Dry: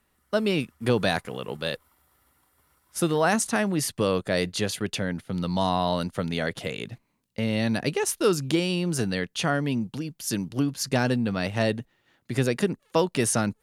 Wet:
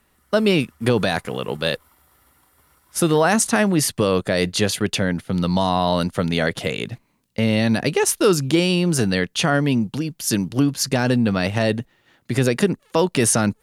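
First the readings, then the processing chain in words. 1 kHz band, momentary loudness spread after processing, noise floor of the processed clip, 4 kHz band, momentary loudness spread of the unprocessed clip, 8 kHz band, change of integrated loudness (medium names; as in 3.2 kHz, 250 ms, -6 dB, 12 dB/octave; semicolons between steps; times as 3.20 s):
+5.0 dB, 8 LU, -63 dBFS, +6.5 dB, 8 LU, +7.5 dB, +6.5 dB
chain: loudness maximiser +13 dB; trim -5.5 dB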